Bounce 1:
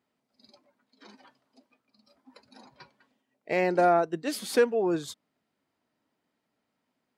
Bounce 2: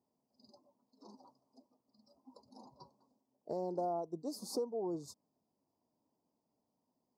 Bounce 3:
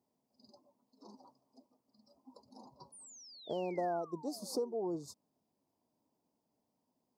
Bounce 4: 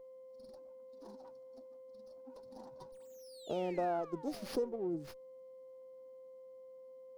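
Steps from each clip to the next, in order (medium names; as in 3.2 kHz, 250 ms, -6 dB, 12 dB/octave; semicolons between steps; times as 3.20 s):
elliptic band-stop 1–4.9 kHz, stop band 40 dB; peaking EQ 11 kHz -6 dB 1.4 oct; compression 2.5:1, threshold -37 dBFS, peak gain reduction 12.5 dB; trim -2.5 dB
painted sound fall, 2.92–4.74 s, 340–10000 Hz -56 dBFS; trim +1 dB
time-frequency box 4.76–5.05 s, 410–7800 Hz -11 dB; whistle 520 Hz -52 dBFS; sliding maximum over 5 samples; trim +1 dB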